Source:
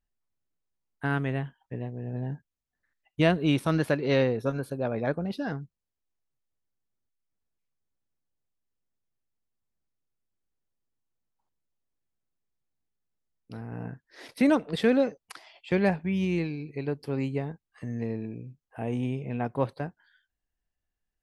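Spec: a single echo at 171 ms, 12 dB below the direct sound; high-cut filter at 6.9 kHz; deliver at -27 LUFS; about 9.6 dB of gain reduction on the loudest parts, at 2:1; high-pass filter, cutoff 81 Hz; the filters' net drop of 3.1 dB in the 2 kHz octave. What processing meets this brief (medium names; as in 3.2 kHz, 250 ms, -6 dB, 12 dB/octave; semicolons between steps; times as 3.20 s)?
high-pass 81 Hz; low-pass 6.9 kHz; peaking EQ 2 kHz -4 dB; compression 2:1, threshold -36 dBFS; delay 171 ms -12 dB; trim +10 dB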